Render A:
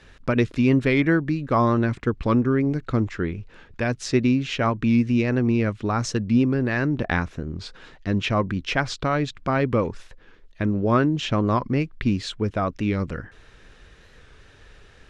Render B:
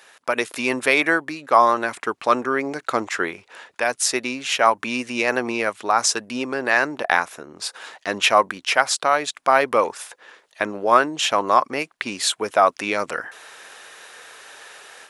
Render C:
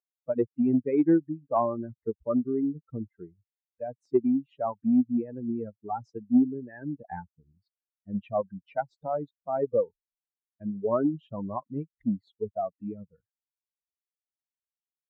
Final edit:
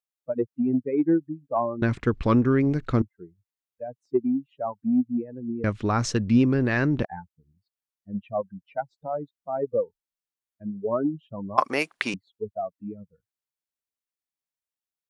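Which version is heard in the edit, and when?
C
1.82–3.02 s: from A
5.64–7.05 s: from A
11.58–12.14 s: from B

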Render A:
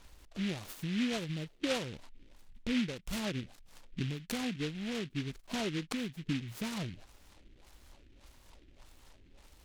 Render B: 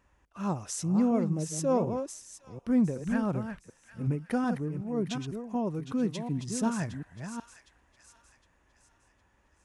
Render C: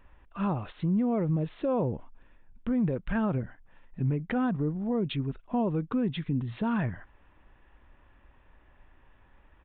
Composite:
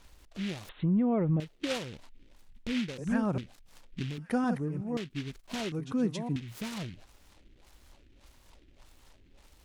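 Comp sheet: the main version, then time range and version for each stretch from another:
A
0.69–1.40 s: from C
2.98–3.38 s: from B
4.18–4.97 s: from B
5.72–6.36 s: from B

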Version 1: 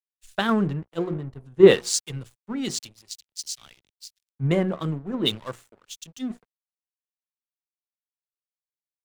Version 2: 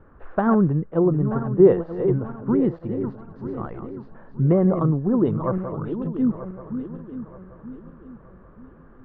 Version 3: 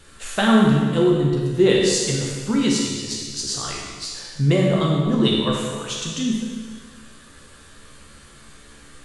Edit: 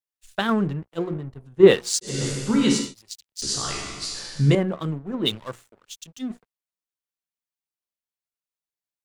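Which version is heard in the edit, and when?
1
2.13–2.83 s: from 3, crossfade 0.24 s
3.42–4.55 s: from 3
not used: 2

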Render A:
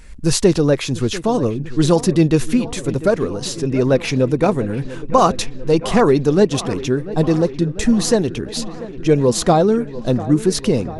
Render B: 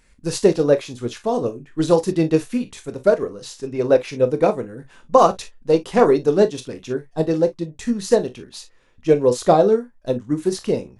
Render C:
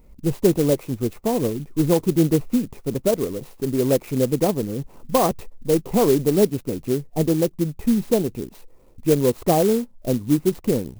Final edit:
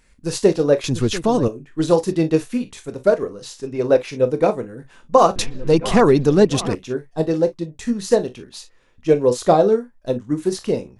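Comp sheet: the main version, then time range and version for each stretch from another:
B
0.84–1.48 s: from A
5.36–6.75 s: from A
not used: C

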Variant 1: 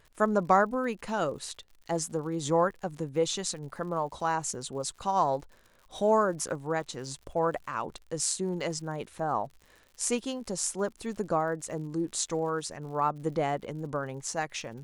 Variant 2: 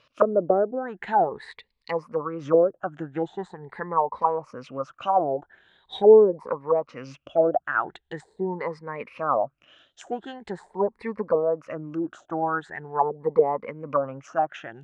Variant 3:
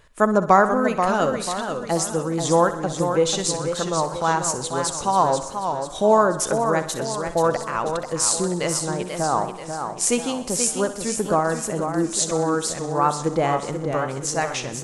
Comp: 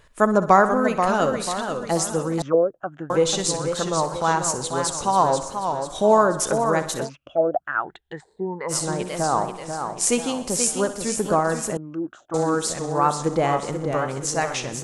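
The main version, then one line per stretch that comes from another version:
3
2.42–3.10 s: from 2
7.07–8.71 s: from 2, crossfade 0.06 s
11.77–12.34 s: from 2
not used: 1

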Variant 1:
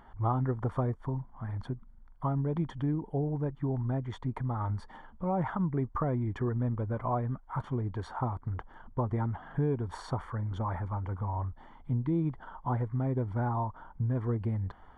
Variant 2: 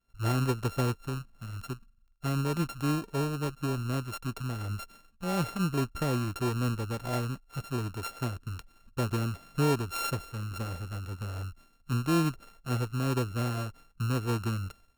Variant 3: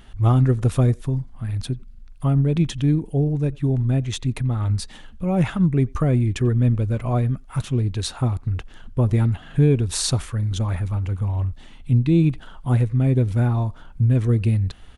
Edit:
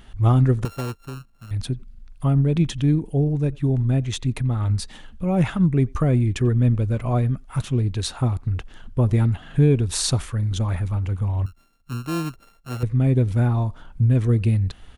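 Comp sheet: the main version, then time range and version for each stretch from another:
3
0.65–1.51 s: from 2
11.46–12.83 s: from 2
not used: 1

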